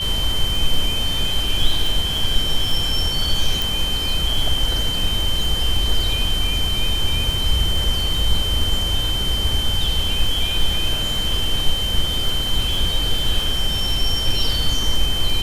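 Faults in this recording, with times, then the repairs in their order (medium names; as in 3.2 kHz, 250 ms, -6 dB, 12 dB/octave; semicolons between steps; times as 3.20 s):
crackle 29 per s -23 dBFS
whine 3.1 kHz -22 dBFS
3.62 s: pop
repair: de-click; band-stop 3.1 kHz, Q 30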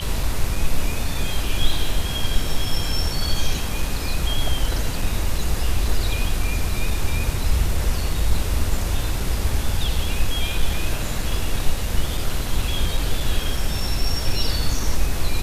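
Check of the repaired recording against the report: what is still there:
nothing left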